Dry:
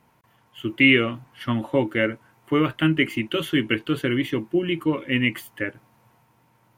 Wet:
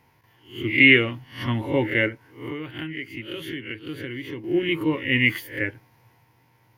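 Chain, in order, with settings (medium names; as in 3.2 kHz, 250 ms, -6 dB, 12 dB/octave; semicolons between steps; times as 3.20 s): reverse spectral sustain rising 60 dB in 0.39 s; graphic EQ with 31 bands 100 Hz +7 dB, 200 Hz -10 dB, 630 Hz -7 dB, 1.25 kHz -9 dB, 2 kHz +5 dB, 5 kHz +4 dB, 8 kHz -11 dB; 2.08–4.44 s: compression 10:1, threshold -30 dBFS, peak gain reduction 17.5 dB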